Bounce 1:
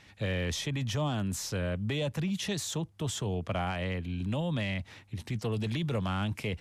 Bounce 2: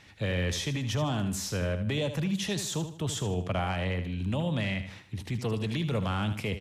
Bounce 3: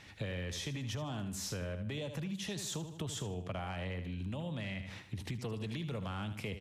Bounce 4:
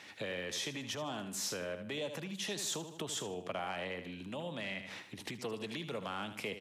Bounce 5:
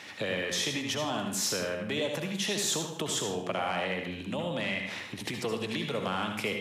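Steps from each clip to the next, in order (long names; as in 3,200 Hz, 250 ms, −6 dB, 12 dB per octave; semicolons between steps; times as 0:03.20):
repeating echo 77 ms, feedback 37%, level −10 dB; level +1.5 dB
downward compressor 12 to 1, threshold −36 dBFS, peak gain reduction 12 dB
high-pass filter 290 Hz 12 dB per octave; level +3.5 dB
convolution reverb RT60 0.55 s, pre-delay 62 ms, DRR 5 dB; level +7 dB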